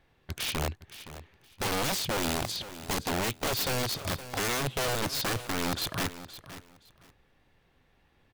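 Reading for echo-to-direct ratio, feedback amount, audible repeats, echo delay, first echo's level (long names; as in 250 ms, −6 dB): −14.0 dB, 21%, 2, 518 ms, −14.0 dB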